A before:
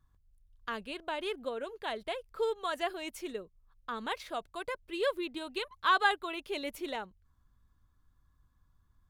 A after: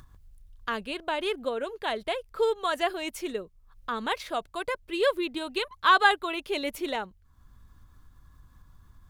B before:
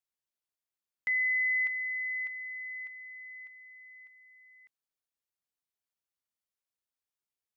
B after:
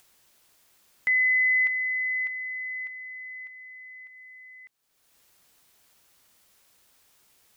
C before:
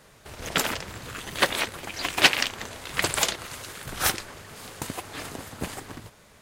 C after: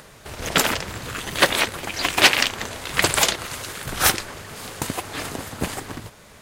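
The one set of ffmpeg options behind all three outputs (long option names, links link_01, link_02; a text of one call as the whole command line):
ffmpeg -i in.wav -af "apsyclip=11.5dB,acompressor=mode=upward:threshold=-38dB:ratio=2.5,volume=-5dB" out.wav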